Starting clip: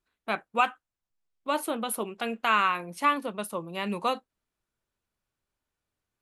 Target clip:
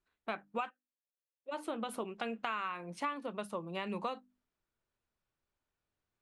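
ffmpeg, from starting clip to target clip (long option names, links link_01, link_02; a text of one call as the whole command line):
ffmpeg -i in.wav -filter_complex "[0:a]lowpass=frequency=9400:width=0.5412,lowpass=frequency=9400:width=1.3066,highshelf=frequency=5000:gain=-8,bandreject=frequency=50:width_type=h:width=6,bandreject=frequency=100:width_type=h:width=6,bandreject=frequency=150:width_type=h:width=6,bandreject=frequency=200:width_type=h:width=6,bandreject=frequency=250:width_type=h:width=6,bandreject=frequency=300:width_type=h:width=6,acompressor=threshold=-32dB:ratio=6,asplit=3[link_01][link_02][link_03];[link_01]afade=type=out:start_time=0.69:duration=0.02[link_04];[link_02]asplit=3[link_05][link_06][link_07];[link_05]bandpass=frequency=530:width_type=q:width=8,volume=0dB[link_08];[link_06]bandpass=frequency=1840:width_type=q:width=8,volume=-6dB[link_09];[link_07]bandpass=frequency=2480:width_type=q:width=8,volume=-9dB[link_10];[link_08][link_09][link_10]amix=inputs=3:normalize=0,afade=type=in:start_time=0.69:duration=0.02,afade=type=out:start_time=1.51:duration=0.02[link_11];[link_03]afade=type=in:start_time=1.51:duration=0.02[link_12];[link_04][link_11][link_12]amix=inputs=3:normalize=0,volume=-2dB" out.wav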